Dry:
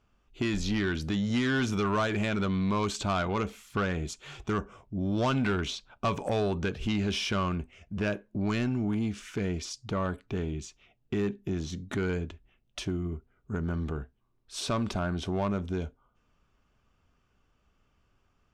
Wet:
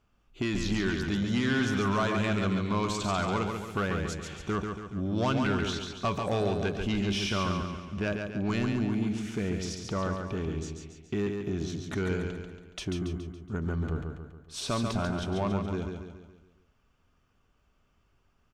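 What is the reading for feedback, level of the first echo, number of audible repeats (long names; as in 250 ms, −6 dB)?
49%, −5.0 dB, 5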